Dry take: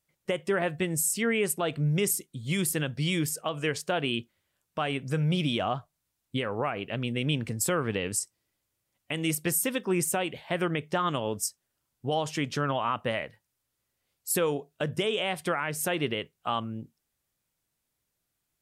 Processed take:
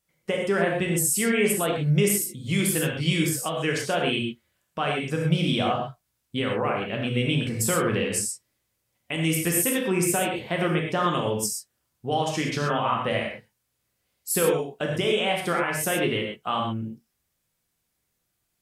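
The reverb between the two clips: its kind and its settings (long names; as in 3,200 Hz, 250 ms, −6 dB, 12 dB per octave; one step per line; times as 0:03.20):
reverb whose tail is shaped and stops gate 150 ms flat, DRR −1 dB
level +1 dB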